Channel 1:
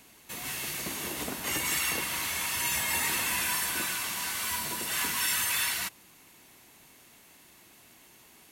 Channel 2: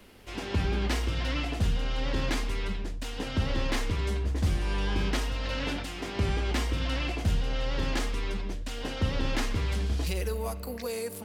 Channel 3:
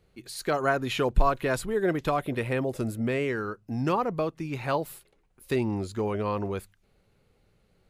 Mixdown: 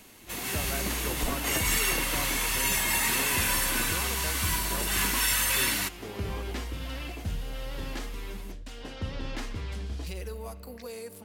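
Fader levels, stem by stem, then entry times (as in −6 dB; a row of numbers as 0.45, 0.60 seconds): +2.5, −6.5, −14.0 decibels; 0.00, 0.00, 0.05 seconds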